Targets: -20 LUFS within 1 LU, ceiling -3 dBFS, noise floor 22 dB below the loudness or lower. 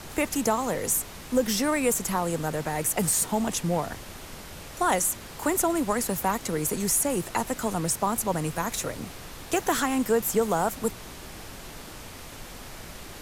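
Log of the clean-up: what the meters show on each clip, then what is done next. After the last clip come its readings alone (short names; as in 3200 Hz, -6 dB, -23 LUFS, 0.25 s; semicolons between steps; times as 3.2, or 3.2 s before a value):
noise floor -42 dBFS; noise floor target -49 dBFS; loudness -26.5 LUFS; peak -12.5 dBFS; loudness target -20.0 LUFS
-> noise print and reduce 7 dB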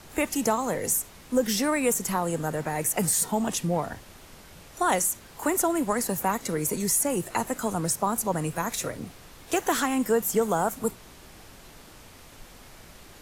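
noise floor -49 dBFS; loudness -26.5 LUFS; peak -12.5 dBFS; loudness target -20.0 LUFS
-> gain +6.5 dB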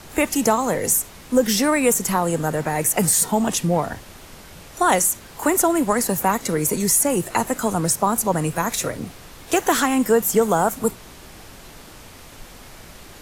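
loudness -20.0 LUFS; peak -6.0 dBFS; noise floor -43 dBFS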